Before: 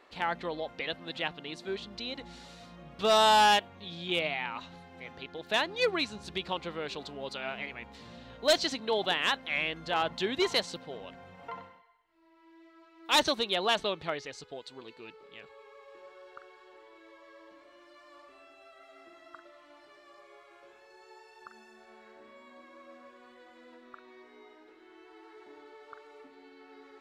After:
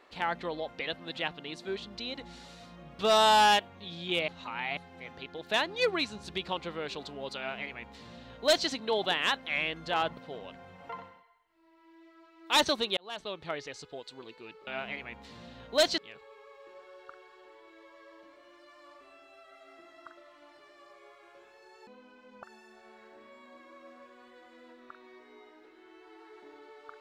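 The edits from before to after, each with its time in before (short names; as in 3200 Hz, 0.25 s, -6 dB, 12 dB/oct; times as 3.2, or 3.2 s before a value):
4.28–4.77 reverse
7.37–8.68 copy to 15.26
10.17–10.76 cut
13.56–14.26 fade in
21.15–21.47 speed 57%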